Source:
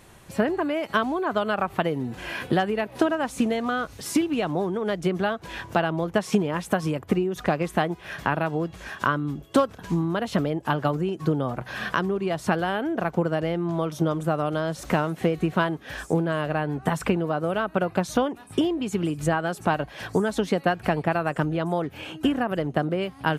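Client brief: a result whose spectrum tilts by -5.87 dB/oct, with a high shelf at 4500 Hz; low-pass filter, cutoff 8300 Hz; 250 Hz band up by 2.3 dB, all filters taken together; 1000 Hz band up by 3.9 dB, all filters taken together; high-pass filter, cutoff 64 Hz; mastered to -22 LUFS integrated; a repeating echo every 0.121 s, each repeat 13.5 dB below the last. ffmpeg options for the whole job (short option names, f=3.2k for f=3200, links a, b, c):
-af "highpass=64,lowpass=8.3k,equalizer=f=250:t=o:g=3,equalizer=f=1k:t=o:g=5.5,highshelf=f=4.5k:g=-8.5,aecho=1:1:121|242:0.211|0.0444,volume=1.5dB"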